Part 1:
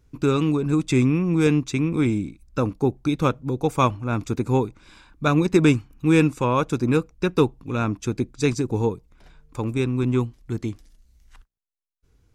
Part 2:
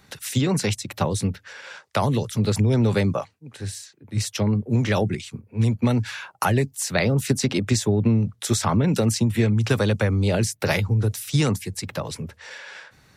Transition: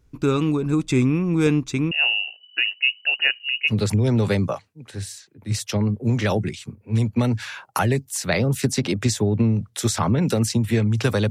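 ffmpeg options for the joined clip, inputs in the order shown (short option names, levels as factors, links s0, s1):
-filter_complex "[0:a]asettb=1/sr,asplit=3[s0][s1][s2];[s0]atrim=end=1.914[s3];[s1]atrim=start=1.91:end=3.73,asetpts=PTS-STARTPTS,afade=t=in:d=0.004:c=qsin,afade=t=out:st=1.816:d=0.004:c=qsin,lowpass=f=2600:t=q:w=0.5098,lowpass=f=2600:t=q:w=0.6013,lowpass=f=2600:t=q:w=0.9,lowpass=f=2600:t=q:w=2.563,afreqshift=-3000[s4];[s2]atrim=start=3.726[s5];[s3][s4]acrossfade=d=0.004:c1=hsin:c2=qsin[s6];[s6][s5]acrossfade=d=0.004:c1=qsin:c2=hsin,apad=whole_dur=11.3,atrim=end=11.3,atrim=end=3.73,asetpts=PTS-STARTPTS[s7];[1:a]atrim=start=2.33:end=9.96,asetpts=PTS-STARTPTS[s8];[s7][s8]acrossfade=d=0.06:c1=tri:c2=tri"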